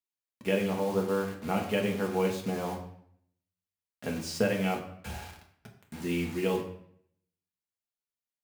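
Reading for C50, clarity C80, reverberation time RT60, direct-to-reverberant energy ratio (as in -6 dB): 8.0 dB, 11.0 dB, 0.60 s, 0.0 dB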